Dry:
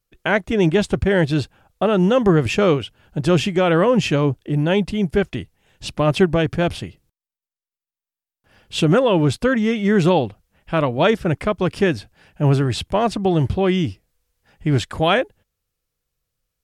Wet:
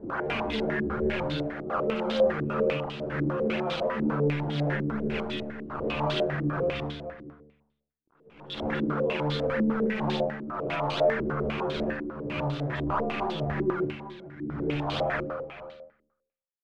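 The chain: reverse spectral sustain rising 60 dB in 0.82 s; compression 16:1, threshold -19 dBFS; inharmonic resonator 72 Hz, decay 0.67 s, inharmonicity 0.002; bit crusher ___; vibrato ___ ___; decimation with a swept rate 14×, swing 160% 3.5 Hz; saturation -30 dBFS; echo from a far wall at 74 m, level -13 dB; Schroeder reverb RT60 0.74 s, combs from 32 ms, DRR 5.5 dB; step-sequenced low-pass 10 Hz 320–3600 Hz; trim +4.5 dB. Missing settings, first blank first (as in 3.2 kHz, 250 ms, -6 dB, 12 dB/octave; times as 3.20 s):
12-bit, 8 Hz, 7.4 cents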